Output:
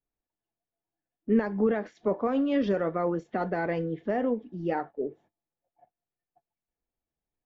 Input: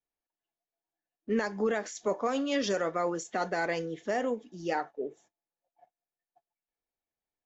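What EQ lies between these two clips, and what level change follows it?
distance through air 370 m; bass shelf 330 Hz +11 dB; 0.0 dB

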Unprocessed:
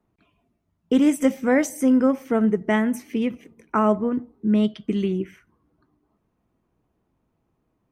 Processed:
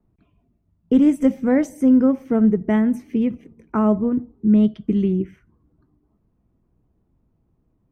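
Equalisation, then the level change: tilt EQ -2 dB/octave; bass shelf 350 Hz +6.5 dB; -4.5 dB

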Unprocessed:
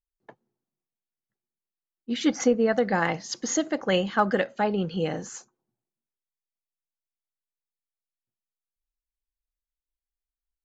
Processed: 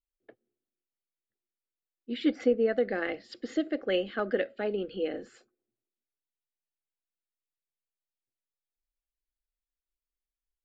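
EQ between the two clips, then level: boxcar filter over 7 samples; static phaser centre 390 Hz, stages 4; -1.5 dB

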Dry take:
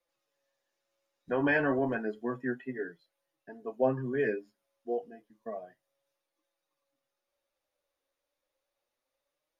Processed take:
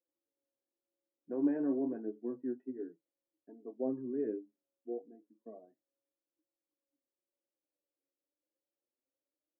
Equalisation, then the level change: ladder band-pass 340 Hz, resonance 60%; bass shelf 230 Hz +10 dB; 0.0 dB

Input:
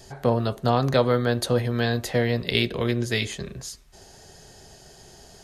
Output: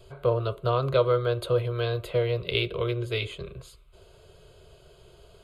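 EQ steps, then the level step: low-pass 3.4 kHz 6 dB/octave; static phaser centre 1.2 kHz, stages 8; 0.0 dB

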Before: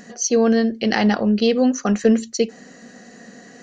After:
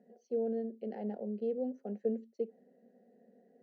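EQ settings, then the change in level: ladder band-pass 390 Hz, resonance 40%; static phaser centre 310 Hz, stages 6; -5.0 dB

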